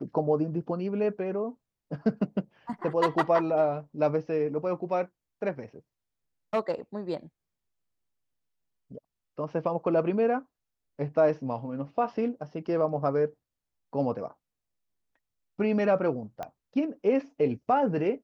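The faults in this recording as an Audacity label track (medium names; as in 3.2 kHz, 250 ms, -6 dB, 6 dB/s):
16.430000	16.430000	pop -22 dBFS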